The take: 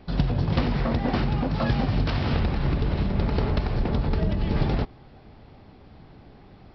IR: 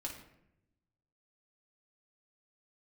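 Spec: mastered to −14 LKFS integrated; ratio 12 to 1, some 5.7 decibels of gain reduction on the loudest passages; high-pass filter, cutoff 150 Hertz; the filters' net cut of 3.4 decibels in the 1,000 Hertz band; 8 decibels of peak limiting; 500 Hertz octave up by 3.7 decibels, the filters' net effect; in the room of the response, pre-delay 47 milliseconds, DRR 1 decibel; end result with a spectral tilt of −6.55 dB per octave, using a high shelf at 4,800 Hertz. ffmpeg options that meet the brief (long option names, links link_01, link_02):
-filter_complex "[0:a]highpass=150,equalizer=frequency=500:width_type=o:gain=6.5,equalizer=frequency=1000:width_type=o:gain=-7.5,highshelf=frequency=4800:gain=-4,acompressor=threshold=-26dB:ratio=12,alimiter=limit=-23dB:level=0:latency=1,asplit=2[link_01][link_02];[1:a]atrim=start_sample=2205,adelay=47[link_03];[link_02][link_03]afir=irnorm=-1:irlink=0,volume=0dB[link_04];[link_01][link_04]amix=inputs=2:normalize=0,volume=16.5dB"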